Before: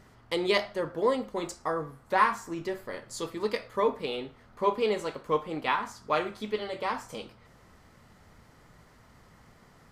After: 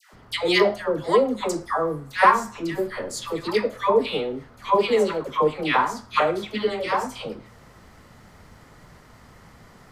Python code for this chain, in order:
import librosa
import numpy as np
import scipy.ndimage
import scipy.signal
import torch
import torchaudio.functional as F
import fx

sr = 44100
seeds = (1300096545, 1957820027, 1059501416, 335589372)

y = fx.dispersion(x, sr, late='lows', ms=137.0, hz=910.0)
y = y * 10.0 ** (7.5 / 20.0)